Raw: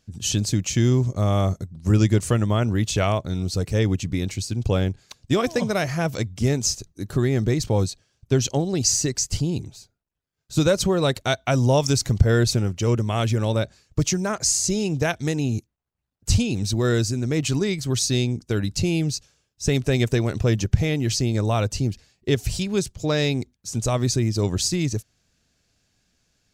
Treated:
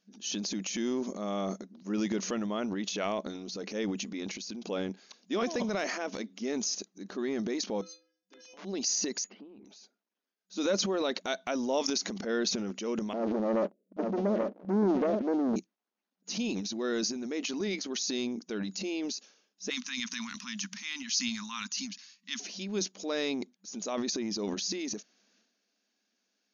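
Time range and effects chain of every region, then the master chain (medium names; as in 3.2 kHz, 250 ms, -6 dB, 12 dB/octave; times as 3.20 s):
7.81–8.65 s: inharmonic resonator 150 Hz, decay 0.82 s, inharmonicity 0.03 + integer overflow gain 32.5 dB
9.24–9.65 s: low-pass 2.5 kHz 24 dB/octave + compression 3:1, threshold -41 dBFS
13.13–15.56 s: steep low-pass 640 Hz 96 dB/octave + waveshaping leveller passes 3 + delay 833 ms -12 dB
19.70–22.40 s: elliptic band-stop 240–1000 Hz + tilt EQ +3 dB/octave
whole clip: FFT band-pass 190–6800 Hz; transient shaper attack -2 dB, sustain +10 dB; trim -9 dB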